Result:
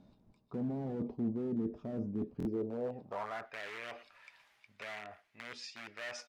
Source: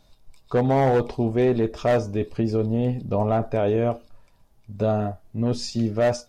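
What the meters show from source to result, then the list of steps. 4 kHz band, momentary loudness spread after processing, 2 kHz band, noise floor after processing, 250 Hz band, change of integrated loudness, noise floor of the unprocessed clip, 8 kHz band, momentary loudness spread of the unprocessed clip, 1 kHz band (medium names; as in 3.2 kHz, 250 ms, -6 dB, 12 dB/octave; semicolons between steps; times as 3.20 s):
-12.0 dB, 13 LU, -9.0 dB, -71 dBFS, -13.0 dB, -16.5 dB, -59 dBFS, no reading, 6 LU, -19.0 dB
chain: in parallel at -6 dB: integer overflow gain 18 dB; on the sum: speakerphone echo 110 ms, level -27 dB; reverse; compression 6:1, threshold -33 dBFS, peak gain reduction 14.5 dB; reverse; band-pass sweep 220 Hz -> 2.1 kHz, 2.37–3.57 s; buffer glitch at 2.38 s, samples 1024, times 2; tape noise reduction on one side only encoder only; trim +4.5 dB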